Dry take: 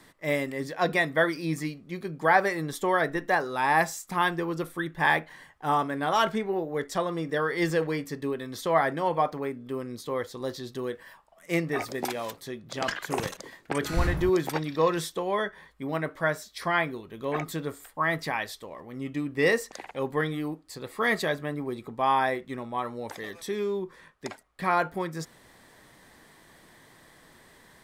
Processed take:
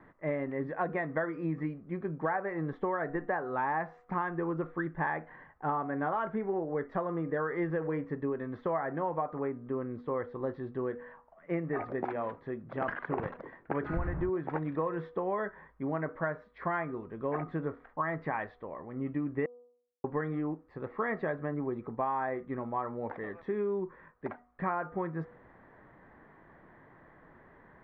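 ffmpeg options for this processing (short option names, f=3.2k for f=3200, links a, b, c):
-filter_complex "[0:a]asplit=3[a][b][c];[a]atrim=end=19.46,asetpts=PTS-STARTPTS,afade=t=out:st=19.456:d=0.004:c=hsin[d];[b]atrim=start=19.46:end=20.04,asetpts=PTS-STARTPTS,volume=0[e];[c]atrim=start=20.04,asetpts=PTS-STARTPTS,afade=t=in:d=0.004:c=hsin[f];[d][e][f]concat=n=3:v=0:a=1,lowpass=f=1.7k:w=0.5412,lowpass=f=1.7k:w=1.3066,bandreject=f=243.5:t=h:w=4,bandreject=f=487:t=h:w=4,bandreject=f=730.5:t=h:w=4,bandreject=f=974:t=h:w=4,bandreject=f=1.2175k:t=h:w=4,acompressor=threshold=-28dB:ratio=12"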